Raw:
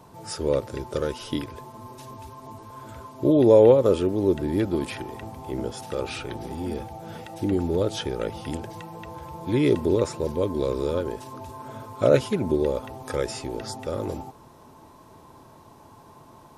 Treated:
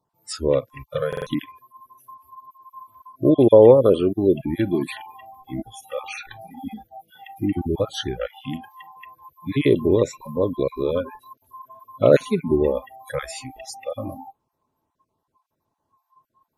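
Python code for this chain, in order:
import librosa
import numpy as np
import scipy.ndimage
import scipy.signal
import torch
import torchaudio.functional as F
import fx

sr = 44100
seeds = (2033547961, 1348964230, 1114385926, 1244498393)

y = fx.spec_dropout(x, sr, seeds[0], share_pct=21)
y = fx.noise_reduce_blind(y, sr, reduce_db=30)
y = fx.buffer_glitch(y, sr, at_s=(1.08,), block=2048, repeats=3)
y = y * 10.0 ** (4.0 / 20.0)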